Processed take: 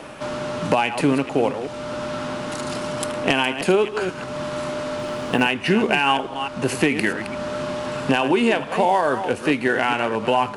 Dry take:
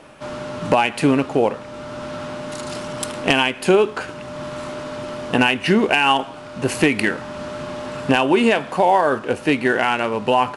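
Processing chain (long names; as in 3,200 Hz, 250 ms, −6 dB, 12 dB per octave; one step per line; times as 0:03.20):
delay that plays each chunk backwards 216 ms, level −11 dB
0:04.99–0:05.48: log-companded quantiser 8 bits
multiband upward and downward compressor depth 40%
level −2.5 dB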